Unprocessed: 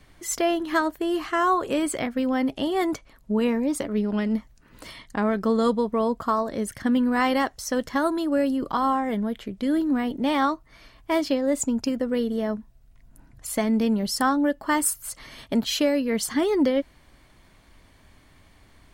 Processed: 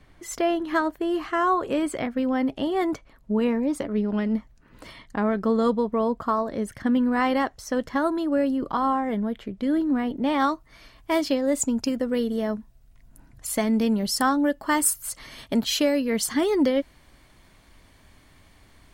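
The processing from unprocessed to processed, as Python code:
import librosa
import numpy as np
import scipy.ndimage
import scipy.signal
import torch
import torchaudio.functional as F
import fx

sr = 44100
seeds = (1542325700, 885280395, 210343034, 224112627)

y = fx.high_shelf(x, sr, hz=3700.0, db=fx.steps((0.0, -8.5), (10.39, 2.5)))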